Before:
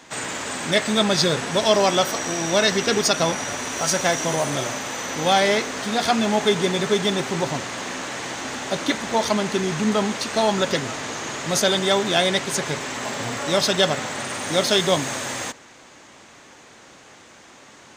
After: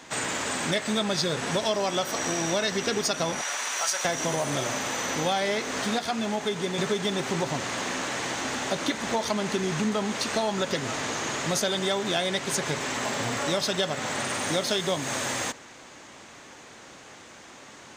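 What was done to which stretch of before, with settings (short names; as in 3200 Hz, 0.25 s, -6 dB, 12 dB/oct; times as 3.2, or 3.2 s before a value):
3.41–4.05 HPF 870 Hz
5.99–6.78 gain -6 dB
whole clip: compressor 4:1, threshold -24 dBFS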